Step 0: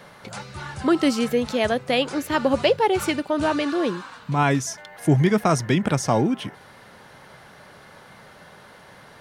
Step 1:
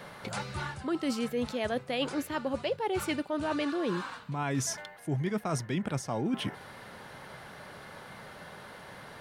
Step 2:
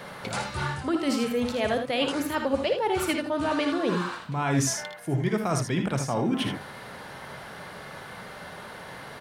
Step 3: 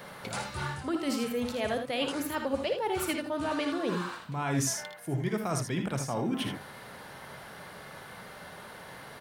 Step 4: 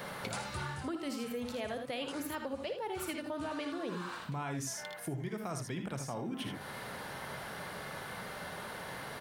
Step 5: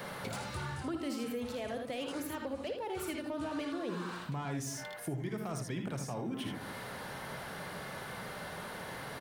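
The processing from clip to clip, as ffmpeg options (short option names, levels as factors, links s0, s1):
-af "equalizer=f=6100:t=o:w=0.56:g=-3,areverse,acompressor=threshold=0.0398:ratio=10,areverse"
-filter_complex "[0:a]bandreject=f=50:t=h:w=6,bandreject=f=100:t=h:w=6,bandreject=f=150:t=h:w=6,bandreject=f=200:t=h:w=6,bandreject=f=250:t=h:w=6,bandreject=f=300:t=h:w=6,bandreject=f=350:t=h:w=6,asplit=2[s0][s1];[s1]aecho=0:1:57|79:0.355|0.398[s2];[s0][s2]amix=inputs=2:normalize=0,volume=1.78"
-af "highshelf=f=12000:g=11,volume=0.562"
-af "acompressor=threshold=0.0112:ratio=6,volume=1.41"
-filter_complex "[0:a]acrossover=split=550[s0][s1];[s0]aecho=1:1:159:0.376[s2];[s1]asoftclip=type=tanh:threshold=0.0119[s3];[s2][s3]amix=inputs=2:normalize=0,volume=1.12"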